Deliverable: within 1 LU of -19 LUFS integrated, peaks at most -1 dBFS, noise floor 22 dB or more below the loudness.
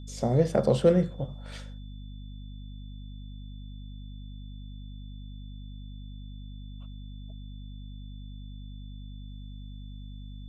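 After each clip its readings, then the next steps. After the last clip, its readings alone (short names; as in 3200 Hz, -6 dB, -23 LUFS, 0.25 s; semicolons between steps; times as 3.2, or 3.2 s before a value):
hum 50 Hz; harmonics up to 250 Hz; hum level -39 dBFS; steady tone 3500 Hz; tone level -58 dBFS; loudness -26.0 LUFS; peak -9.5 dBFS; loudness target -19.0 LUFS
-> de-hum 50 Hz, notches 5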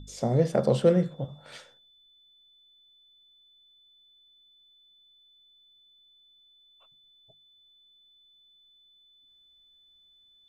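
hum none; steady tone 3500 Hz; tone level -58 dBFS
-> notch 3500 Hz, Q 30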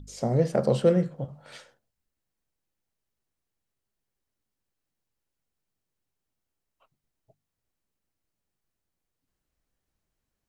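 steady tone none; loudness -24.5 LUFS; peak -9.5 dBFS; loudness target -19.0 LUFS
-> gain +5.5 dB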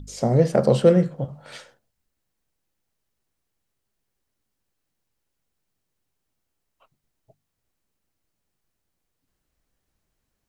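loudness -19.0 LUFS; peak -4.0 dBFS; noise floor -79 dBFS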